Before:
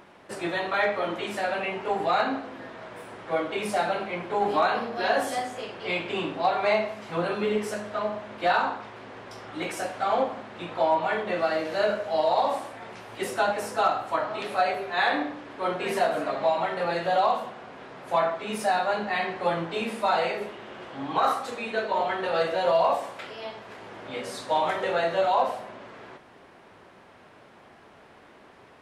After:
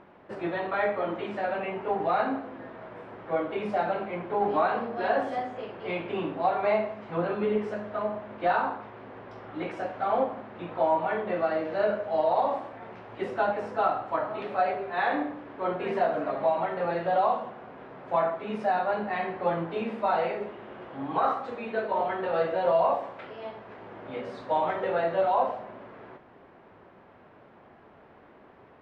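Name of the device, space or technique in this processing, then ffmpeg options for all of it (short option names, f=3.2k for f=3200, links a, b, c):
phone in a pocket: -af "lowpass=3.4k,highshelf=f=2k:g=-11"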